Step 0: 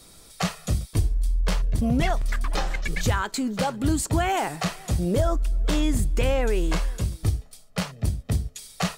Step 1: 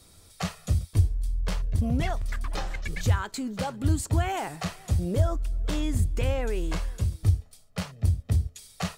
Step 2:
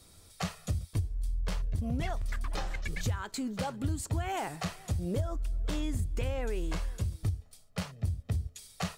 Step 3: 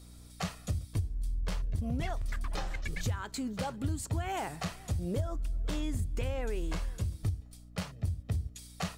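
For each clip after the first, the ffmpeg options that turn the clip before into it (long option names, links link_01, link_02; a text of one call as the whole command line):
ffmpeg -i in.wav -af "equalizer=frequency=86:width=2.3:gain=12,volume=-6dB" out.wav
ffmpeg -i in.wav -af "acompressor=threshold=-25dB:ratio=6,volume=-2.5dB" out.wav
ffmpeg -i in.wav -af "aeval=exprs='val(0)+0.00316*(sin(2*PI*60*n/s)+sin(2*PI*2*60*n/s)/2+sin(2*PI*3*60*n/s)/3+sin(2*PI*4*60*n/s)/4+sin(2*PI*5*60*n/s)/5)':channel_layout=same,volume=-1dB" out.wav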